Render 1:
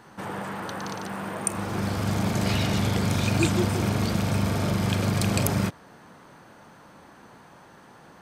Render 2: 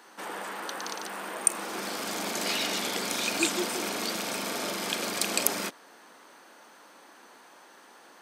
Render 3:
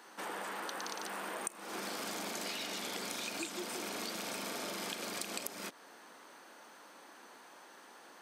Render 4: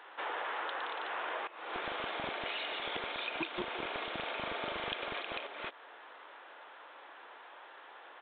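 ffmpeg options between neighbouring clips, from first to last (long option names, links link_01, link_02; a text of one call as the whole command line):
ffmpeg -i in.wav -af "highpass=frequency=270:width=0.5412,highpass=frequency=270:width=1.3066,highshelf=frequency=2000:gain=9,volume=-4.5dB" out.wav
ffmpeg -i in.wav -af "acompressor=threshold=-34dB:ratio=12,volume=-2.5dB" out.wav
ffmpeg -i in.wav -filter_complex "[0:a]acrossover=split=380[link_01][link_02];[link_01]acrusher=bits=6:mix=0:aa=0.000001[link_03];[link_03][link_02]amix=inputs=2:normalize=0,aresample=8000,aresample=44100,volume=4.5dB" out.wav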